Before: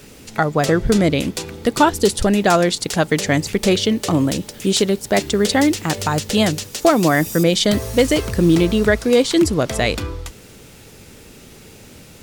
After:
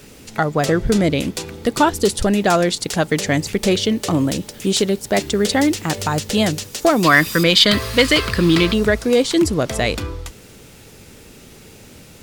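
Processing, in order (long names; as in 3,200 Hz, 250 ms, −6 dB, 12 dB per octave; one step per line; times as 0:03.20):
gain on a spectral selection 0:07.04–0:08.74, 960–5,200 Hz +10 dB
in parallel at −3 dB: soft clipping −7.5 dBFS, distortion −15 dB
on the sum: level −5 dB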